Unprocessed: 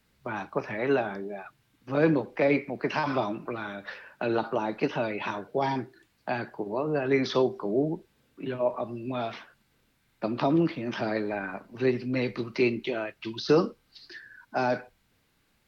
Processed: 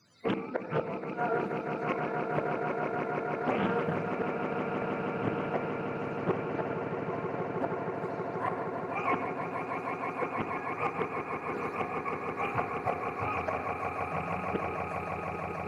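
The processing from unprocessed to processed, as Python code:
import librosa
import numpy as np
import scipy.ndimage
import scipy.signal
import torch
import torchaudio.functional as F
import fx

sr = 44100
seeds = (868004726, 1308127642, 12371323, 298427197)

p1 = fx.octave_mirror(x, sr, pivot_hz=530.0)
p2 = scipy.signal.sosfilt(scipy.signal.butter(2, 240.0, 'highpass', fs=sr, output='sos'), p1)
p3 = fx.peak_eq(p2, sr, hz=5400.0, db=9.0, octaves=0.84)
p4 = fx.notch(p3, sr, hz=830.0, q=12.0)
p5 = np.clip(p4, -10.0 ** (-28.0 / 20.0), 10.0 ** (-28.0 / 20.0))
p6 = p4 + (p5 * librosa.db_to_amplitude(-8.5))
p7 = fx.gate_flip(p6, sr, shuts_db=-24.0, range_db=-25)
p8 = fx.echo_swell(p7, sr, ms=159, loudest=8, wet_db=-8.0)
p9 = fx.rev_gated(p8, sr, seeds[0], gate_ms=210, shape='flat', drr_db=7.0)
p10 = fx.doppler_dist(p9, sr, depth_ms=0.43)
y = p10 * librosa.db_to_amplitude(5.5)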